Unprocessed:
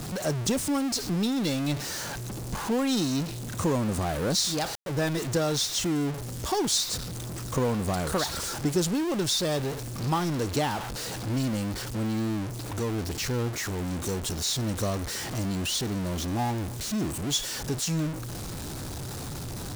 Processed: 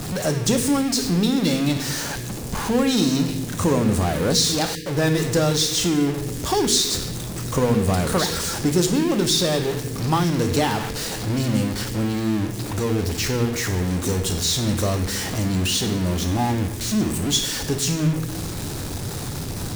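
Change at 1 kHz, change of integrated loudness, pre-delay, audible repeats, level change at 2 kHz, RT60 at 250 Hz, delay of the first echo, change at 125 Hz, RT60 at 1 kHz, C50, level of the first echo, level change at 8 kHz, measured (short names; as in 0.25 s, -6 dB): +5.5 dB, +7.0 dB, 8 ms, none, +7.0 dB, 1.3 s, none, +7.0 dB, 1.1 s, 7.5 dB, none, +6.5 dB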